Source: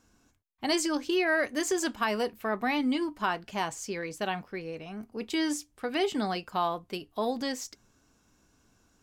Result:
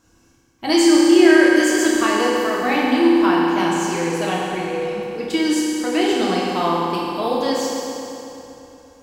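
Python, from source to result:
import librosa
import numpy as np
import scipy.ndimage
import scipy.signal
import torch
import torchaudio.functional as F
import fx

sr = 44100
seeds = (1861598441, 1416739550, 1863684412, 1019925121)

y = fx.rev_fdn(x, sr, rt60_s=3.1, lf_ratio=1.0, hf_ratio=0.8, size_ms=18.0, drr_db=-6.0)
y = y * librosa.db_to_amplitude(4.0)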